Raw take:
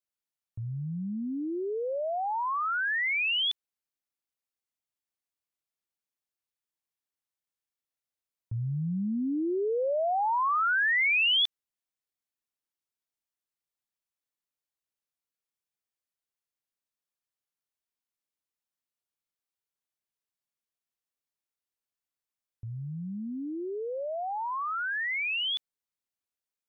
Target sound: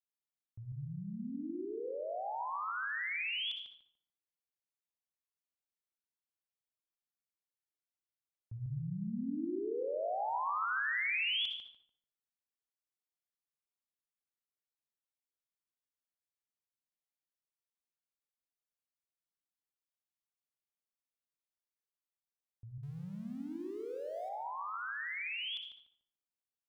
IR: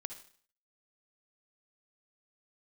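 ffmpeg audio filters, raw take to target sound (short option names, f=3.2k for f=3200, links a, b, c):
-filter_complex "[0:a]asettb=1/sr,asplit=3[a][b][c];[a]atrim=end=22.834[d];[b]atrim=start=22.83:end=24.29,asetpts=PTS-STARTPTS,afade=t=in:d=0.004:c=qsin,afade=t=out:st=1.456:d=0.004:c=qsin,aeval=exprs='val(0)+0.5*0.00501*sgn(val(0))':c=same[e];[c]atrim=start=24.286[f];[d][e]acrossfade=d=0.004:c1=hsin:c2=qsin[g];[g][f]acrossfade=d=0.004:c1=qsin:c2=hsin,asplit=2[h][i];[i]adelay=146,lowpass=f=1.4k:p=1,volume=-3dB,asplit=2[j][k];[k]adelay=146,lowpass=f=1.4k:p=1,volume=0.32,asplit=2[l][m];[m]adelay=146,lowpass=f=1.4k:p=1,volume=0.32,asplit=2[n][o];[o]adelay=146,lowpass=f=1.4k:p=1,volume=0.32[p];[h][j][l][n][p]amix=inputs=5:normalize=0[q];[1:a]atrim=start_sample=2205,afade=t=out:st=0.28:d=0.01,atrim=end_sample=12789[r];[q][r]afir=irnorm=-1:irlink=0,volume=-7.5dB"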